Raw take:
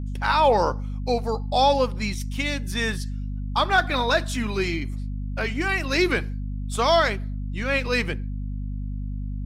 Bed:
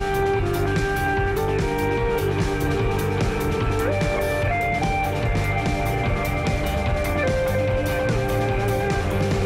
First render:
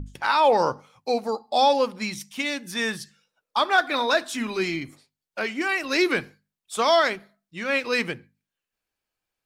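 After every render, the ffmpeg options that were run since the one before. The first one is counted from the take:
-af "bandreject=f=50:t=h:w=6,bandreject=f=100:t=h:w=6,bandreject=f=150:t=h:w=6,bandreject=f=200:t=h:w=6,bandreject=f=250:t=h:w=6"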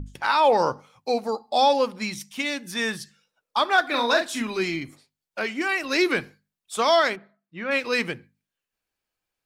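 -filter_complex "[0:a]asettb=1/sr,asplit=3[s0][s1][s2];[s0]atrim=end=3.874[s3];[s1]atrim=start=3.87:end=4.42,asetpts=PTS-STARTPTS,afade=t=in:d=0.004:c=qsin,afade=t=out:st=0.546:d=0.004:c=qsin,asplit=2[s4][s5];[s5]adelay=42,volume=0.501[s6];[s4][s6]amix=inputs=2:normalize=0,atrim=end_sample=24255[s7];[s2]atrim=start=4.416[s8];[s3][s7]acrossfade=d=0.004:c1=hsin:c2=qsin[s9];[s9][s8]acrossfade=d=0.004:c1=qsin:c2=hsin,asplit=3[s10][s11][s12];[s10]afade=t=out:st=7.15:d=0.02[s13];[s11]highpass=110,lowpass=2200,afade=t=in:st=7.15:d=0.02,afade=t=out:st=7.7:d=0.02[s14];[s12]afade=t=in:st=7.7:d=0.02[s15];[s13][s14][s15]amix=inputs=3:normalize=0"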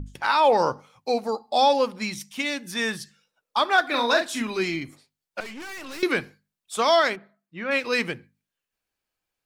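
-filter_complex "[0:a]asettb=1/sr,asplit=3[s0][s1][s2];[s0]atrim=end=5.404[s3];[s1]atrim=start=5.4:end=6.03,asetpts=PTS-STARTPTS,afade=t=in:d=0.004:c=qsin,afade=t=out:st=0.626:d=0.004:c=qsin,aeval=exprs='(tanh(63.1*val(0)+0.45)-tanh(0.45))/63.1':c=same[s4];[s2]atrim=start=6.026[s5];[s3][s4]acrossfade=d=0.004:c1=hsin:c2=qsin[s6];[s6][s5]acrossfade=d=0.004:c1=qsin:c2=hsin"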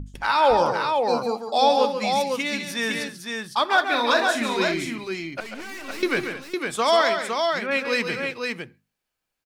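-af "aecho=1:1:141|205|508:0.422|0.211|0.596"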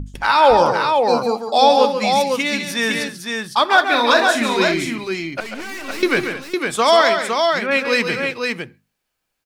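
-af "volume=2,alimiter=limit=0.794:level=0:latency=1"

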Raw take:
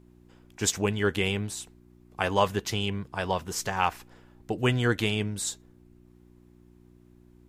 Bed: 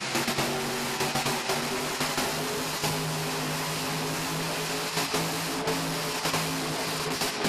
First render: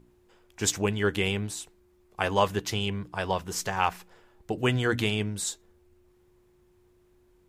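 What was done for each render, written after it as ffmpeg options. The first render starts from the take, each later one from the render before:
-af "bandreject=f=60:t=h:w=4,bandreject=f=120:t=h:w=4,bandreject=f=180:t=h:w=4,bandreject=f=240:t=h:w=4,bandreject=f=300:t=h:w=4"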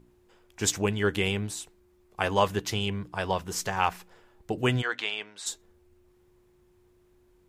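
-filter_complex "[0:a]asplit=3[s0][s1][s2];[s0]afade=t=out:st=4.81:d=0.02[s3];[s1]highpass=770,lowpass=4400,afade=t=in:st=4.81:d=0.02,afade=t=out:st=5.45:d=0.02[s4];[s2]afade=t=in:st=5.45:d=0.02[s5];[s3][s4][s5]amix=inputs=3:normalize=0"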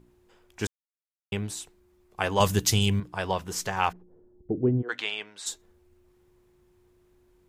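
-filter_complex "[0:a]asettb=1/sr,asplit=3[s0][s1][s2];[s0]atrim=end=2.404[s3];[s1]atrim=start=2.4:end=3,asetpts=PTS-STARTPTS,afade=t=in:d=0.004:c=qsin,afade=t=out:st=0.596:d=0.004:c=qsin,bass=f=250:g=9,treble=f=4000:g=14[s4];[s2]atrim=start=2.996[s5];[s3][s4]acrossfade=d=0.004:c1=hsin:c2=qsin[s6];[s6][s5]acrossfade=d=0.004:c1=qsin:c2=hsin,asplit=3[s7][s8][s9];[s7]afade=t=out:st=3.91:d=0.02[s10];[s8]lowpass=f=340:t=q:w=1.8,afade=t=in:st=3.91:d=0.02,afade=t=out:st=4.88:d=0.02[s11];[s9]afade=t=in:st=4.88:d=0.02[s12];[s10][s11][s12]amix=inputs=3:normalize=0,asplit=3[s13][s14][s15];[s13]atrim=end=0.67,asetpts=PTS-STARTPTS,afade=t=out:st=0.666:d=0.004:c=hsin[s16];[s14]atrim=start=0.67:end=1.32,asetpts=PTS-STARTPTS,volume=0[s17];[s15]atrim=start=1.32,asetpts=PTS-STARTPTS,afade=t=in:d=0.004:c=hsin[s18];[s16][s17][s18]concat=n=3:v=0:a=1"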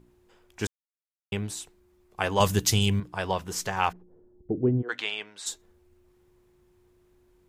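-af anull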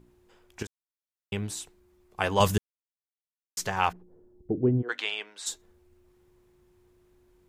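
-filter_complex "[0:a]asettb=1/sr,asplit=3[s0][s1][s2];[s0]atrim=end=4.924[s3];[s1]atrim=start=4.92:end=5.48,asetpts=PTS-STARTPTS,afade=t=in:d=0.004:c=qsin,afade=t=out:st=0.556:d=0.004:c=qsin,highpass=300[s4];[s2]atrim=start=5.476[s5];[s3][s4]acrossfade=d=0.004:c1=hsin:c2=qsin[s6];[s6][s5]acrossfade=d=0.004:c1=qsin:c2=hsin,asplit=4[s7][s8][s9][s10];[s7]atrim=end=0.63,asetpts=PTS-STARTPTS,afade=t=out:st=0.626:d=0.004:c=hsin:silence=0.237137[s11];[s8]atrim=start=0.63:end=2.58,asetpts=PTS-STARTPTS,afade=t=in:d=0.89:silence=0.237137,afade=t=out:st=1.946:d=0.004:c=hsin[s12];[s9]atrim=start=2.58:end=3.57,asetpts=PTS-STARTPTS,volume=0[s13];[s10]atrim=start=3.57,asetpts=PTS-STARTPTS,afade=t=in:d=0.004:c=hsin[s14];[s11][s12][s13][s14]concat=n=4:v=0:a=1"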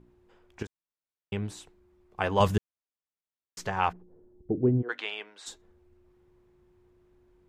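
-af "lowpass=f=2100:p=1"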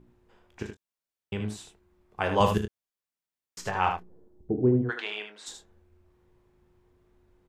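-filter_complex "[0:a]asplit=2[s0][s1];[s1]adelay=24,volume=0.282[s2];[s0][s2]amix=inputs=2:normalize=0,aecho=1:1:37.9|75.8:0.282|0.447"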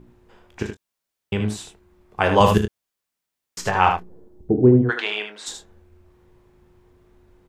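-af "volume=2.82,alimiter=limit=0.794:level=0:latency=1"

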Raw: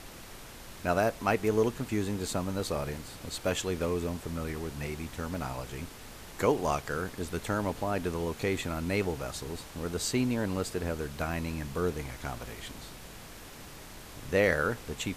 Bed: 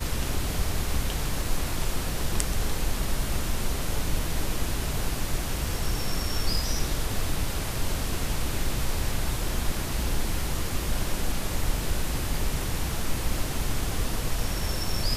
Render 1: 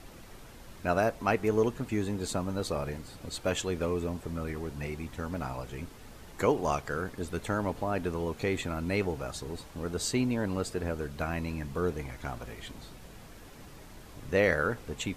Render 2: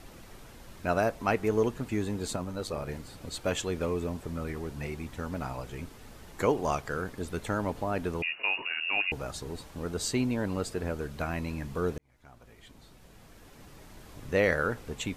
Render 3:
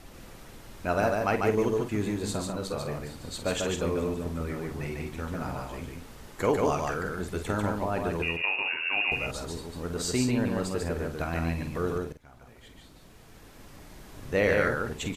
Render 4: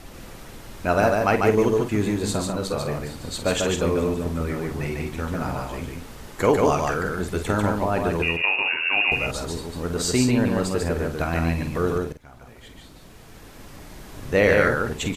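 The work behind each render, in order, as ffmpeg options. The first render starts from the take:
-af "afftdn=nr=7:nf=-47"
-filter_complex "[0:a]asettb=1/sr,asplit=3[s0][s1][s2];[s0]atrim=end=2.364[s3];[s1]atrim=start=2.36:end=2.89,asetpts=PTS-STARTPTS,afade=t=in:d=0.004:c=qsin,afade=t=out:st=0.526:d=0.004:c=qsin,tremolo=f=100:d=0.519[s4];[s2]atrim=start=2.886[s5];[s3][s4]acrossfade=d=0.004:c1=hsin:c2=qsin[s6];[s6][s5]acrossfade=d=0.004:c1=qsin:c2=hsin,asettb=1/sr,asplit=3[s7][s8][s9];[s7]atrim=end=8.224[s10];[s8]atrim=start=8.22:end=9.12,asetpts=PTS-STARTPTS,afade=t=in:d=0.004:c=qsin,afade=t=out:st=0.896:d=0.004:c=qsin,lowpass=f=2500:t=q:w=0.5098,lowpass=f=2500:t=q:w=0.6013,lowpass=f=2500:t=q:w=0.9,lowpass=f=2500:t=q:w=2.563,afreqshift=-2900[s11];[s9]atrim=start=9.116[s12];[s10][s11]acrossfade=d=0.004:c1=hsin:c2=qsin[s13];[s13][s12]acrossfade=d=0.004:c1=qsin:c2=hsin,asplit=2[s14][s15];[s14]atrim=end=11.98,asetpts=PTS-STARTPTS,afade=t=out:st=11.976:d=0.004:c=hsin[s16];[s15]atrim=start=11.98,asetpts=PTS-STARTPTS,afade=t=in:d=2.15[s17];[s16][s17]concat=n=2:v=0:a=1"
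-filter_complex "[0:a]asplit=2[s0][s1];[s1]adelay=48,volume=0.355[s2];[s0][s2]amix=inputs=2:normalize=0,aecho=1:1:145:0.708"
-af "volume=2.11"

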